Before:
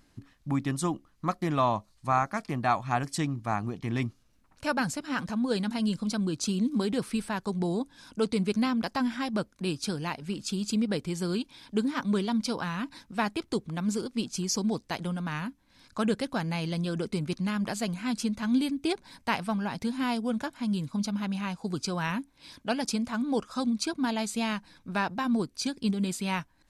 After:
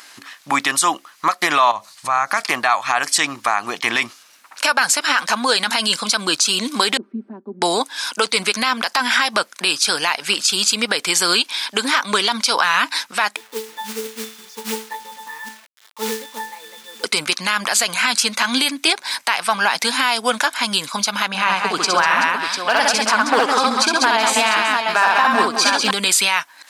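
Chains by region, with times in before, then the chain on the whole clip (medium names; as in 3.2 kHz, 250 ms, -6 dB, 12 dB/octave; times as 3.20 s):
1.71–2.48 s: peaking EQ 120 Hz +12.5 dB 1.2 oct + compression 12:1, threshold -32 dBFS
6.97–7.62 s: companding laws mixed up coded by mu + Butterworth band-pass 270 Hz, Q 2.7 + comb 5.1 ms, depth 94%
13.36–17.04 s: peaking EQ 360 Hz +6 dB 0.81 oct + pitch-class resonator A, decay 0.35 s + companded quantiser 6-bit
21.28–25.91 s: treble shelf 2.7 kHz -12 dB + overload inside the chain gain 21.5 dB + multi-tap echo 63/137/195/378/695 ms -3.5/-16.5/-7/-14.5/-9 dB
whole clip: high-pass 1.1 kHz 12 dB/octave; compression, threshold -35 dBFS; loudness maximiser +31 dB; trim -3.5 dB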